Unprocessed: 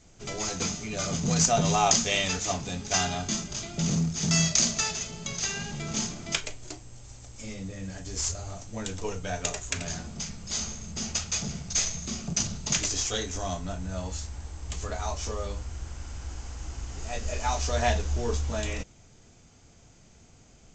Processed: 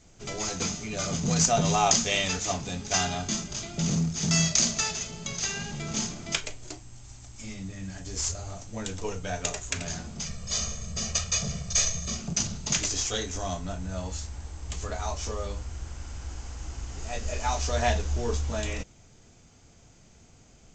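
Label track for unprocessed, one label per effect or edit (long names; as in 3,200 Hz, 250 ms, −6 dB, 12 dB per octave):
6.800000	8.010000	parametric band 500 Hz −12 dB 0.38 octaves
10.250000	12.170000	comb filter 1.7 ms, depth 82%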